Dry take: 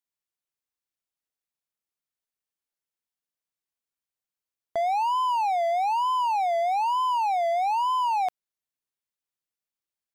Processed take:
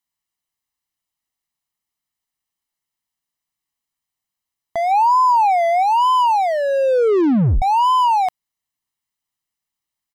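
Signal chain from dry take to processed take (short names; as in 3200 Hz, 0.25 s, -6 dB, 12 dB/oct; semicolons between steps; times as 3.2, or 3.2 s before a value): comb 1 ms, depth 55%; 4.91–5.83 sample leveller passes 1; 6.44 tape stop 1.18 s; gain +6 dB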